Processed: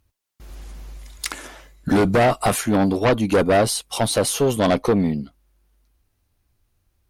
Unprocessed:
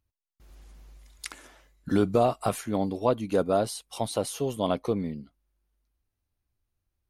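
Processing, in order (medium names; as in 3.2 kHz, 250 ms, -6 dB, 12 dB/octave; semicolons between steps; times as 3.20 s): single-diode clipper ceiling -18 dBFS; sine folder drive 7 dB, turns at -14.5 dBFS; trim +2.5 dB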